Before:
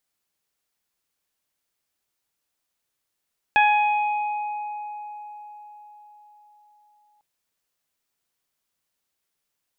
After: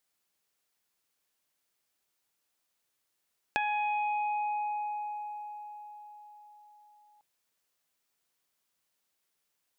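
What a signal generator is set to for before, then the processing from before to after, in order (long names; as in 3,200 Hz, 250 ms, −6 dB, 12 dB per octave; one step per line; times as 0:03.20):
harmonic partials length 3.65 s, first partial 837 Hz, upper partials −3.5/−4/−17.5 dB, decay 4.83 s, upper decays 0.66/2.46/1.25 s, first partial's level −15 dB
downward compressor 4 to 1, threshold −31 dBFS
low-shelf EQ 140 Hz −6 dB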